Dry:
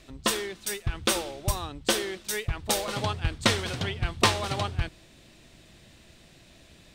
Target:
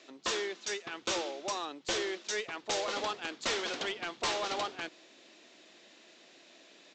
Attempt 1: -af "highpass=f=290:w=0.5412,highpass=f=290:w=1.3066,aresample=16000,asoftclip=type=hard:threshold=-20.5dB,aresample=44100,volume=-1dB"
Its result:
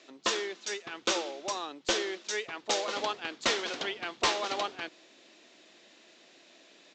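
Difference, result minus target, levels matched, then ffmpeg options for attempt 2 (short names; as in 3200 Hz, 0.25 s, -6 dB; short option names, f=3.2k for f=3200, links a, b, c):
hard clip: distortion -5 dB
-af "highpass=f=290:w=0.5412,highpass=f=290:w=1.3066,aresample=16000,asoftclip=type=hard:threshold=-28dB,aresample=44100,volume=-1dB"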